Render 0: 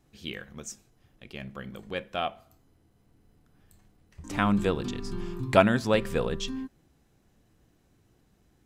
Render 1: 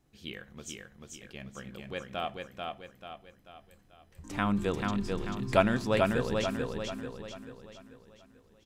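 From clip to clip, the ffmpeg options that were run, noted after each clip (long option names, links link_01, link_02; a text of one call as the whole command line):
ffmpeg -i in.wav -af "aecho=1:1:439|878|1317|1756|2195|2634:0.668|0.301|0.135|0.0609|0.0274|0.0123,volume=-4.5dB" out.wav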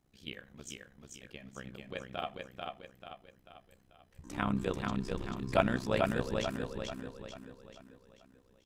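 ffmpeg -i in.wav -af "tremolo=f=64:d=0.857" out.wav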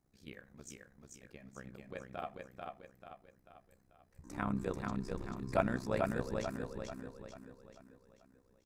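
ffmpeg -i in.wav -af "equalizer=frequency=3100:width=2.7:gain=-13,volume=-3.5dB" out.wav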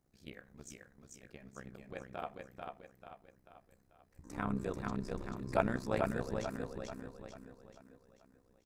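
ffmpeg -i in.wav -af "tremolo=f=220:d=0.571,volume=2.5dB" out.wav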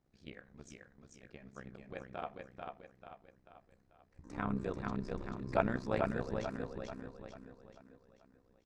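ffmpeg -i in.wav -af "lowpass=4900" out.wav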